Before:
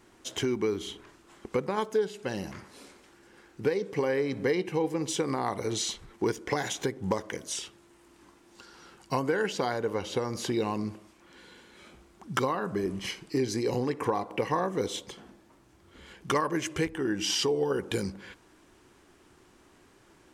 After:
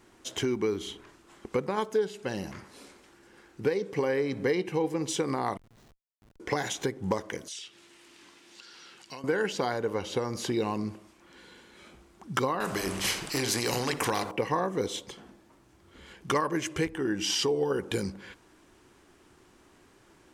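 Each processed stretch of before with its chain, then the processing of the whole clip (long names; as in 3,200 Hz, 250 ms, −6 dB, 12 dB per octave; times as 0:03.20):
0:05.57–0:06.40: guitar amp tone stack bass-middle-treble 6-0-2 + downward compressor 5 to 1, threshold −52 dBFS + comparator with hysteresis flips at −50 dBFS
0:07.48–0:09.24: meter weighting curve D + downward compressor 2 to 1, threshold −50 dBFS
0:12.60–0:14.31: mains-hum notches 50/100/150/200/250/300/350/400 Hz + every bin compressed towards the loudest bin 2 to 1
whole clip: no processing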